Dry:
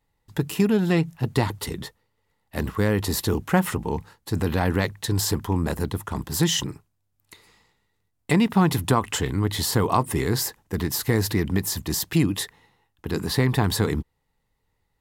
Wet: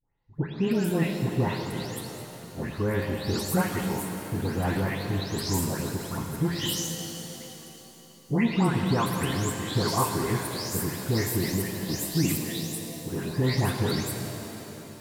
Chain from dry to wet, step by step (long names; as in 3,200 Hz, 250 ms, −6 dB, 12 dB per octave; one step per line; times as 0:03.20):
every frequency bin delayed by itself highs late, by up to 347 ms
reverb with rising layers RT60 3.4 s, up +7 semitones, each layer −8 dB, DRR 3.5 dB
level −4.5 dB